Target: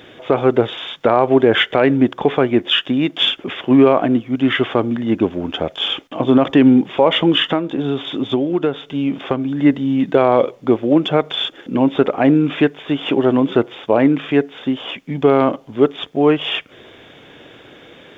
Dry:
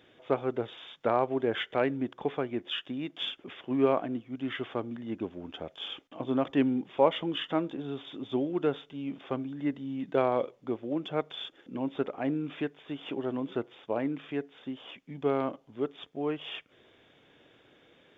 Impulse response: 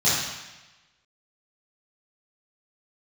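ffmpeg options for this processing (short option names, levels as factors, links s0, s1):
-filter_complex "[0:a]asettb=1/sr,asplit=3[s0][s1][s2];[s0]atrim=end=7.444[s3];[s1]atrim=start=7.44:end=9.57,asetpts=PTS-STARTPTS,afade=t=in:d=0.004:c=qsin,afade=t=out:st=2.126:d=0.004:c=qsin,acompressor=threshold=0.0224:ratio=6[s4];[s2]atrim=start=9.566[s5];[s3][s4]acrossfade=d=0.004:c1=hsin:c2=qsin[s6];[s6][s5]acrossfade=d=0.004:c1=qsin:c2=hsin,alimiter=level_in=10:limit=0.891:release=50:level=0:latency=1,volume=0.841"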